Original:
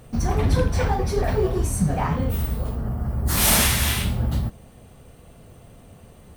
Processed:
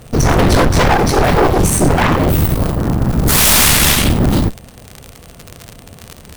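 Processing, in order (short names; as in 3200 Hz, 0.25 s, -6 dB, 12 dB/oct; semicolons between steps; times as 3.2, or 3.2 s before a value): crackle 160/s -31 dBFS; added harmonics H 8 -8 dB, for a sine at -5 dBFS; overloaded stage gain 15.5 dB; gain +8.5 dB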